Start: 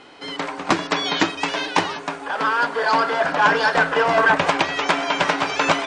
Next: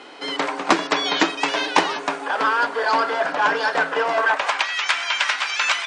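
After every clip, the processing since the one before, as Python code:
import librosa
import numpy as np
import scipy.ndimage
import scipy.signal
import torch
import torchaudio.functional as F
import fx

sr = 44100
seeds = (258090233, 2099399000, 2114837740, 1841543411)

y = fx.filter_sweep_highpass(x, sr, from_hz=280.0, to_hz=1700.0, start_s=4.02, end_s=4.75, q=0.81)
y = fx.rider(y, sr, range_db=4, speed_s=0.5)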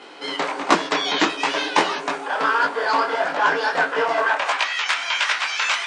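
y = fx.detune_double(x, sr, cents=52)
y = F.gain(torch.from_numpy(y), 3.5).numpy()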